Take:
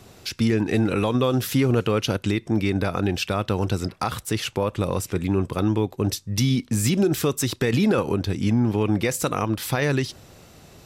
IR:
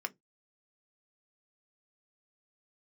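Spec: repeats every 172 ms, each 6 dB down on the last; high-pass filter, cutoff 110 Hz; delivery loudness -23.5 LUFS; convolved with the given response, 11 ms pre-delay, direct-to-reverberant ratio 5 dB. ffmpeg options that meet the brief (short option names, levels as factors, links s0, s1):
-filter_complex "[0:a]highpass=110,aecho=1:1:172|344|516|688|860|1032:0.501|0.251|0.125|0.0626|0.0313|0.0157,asplit=2[s0][s1];[1:a]atrim=start_sample=2205,adelay=11[s2];[s1][s2]afir=irnorm=-1:irlink=0,volume=0.447[s3];[s0][s3]amix=inputs=2:normalize=0,volume=0.841"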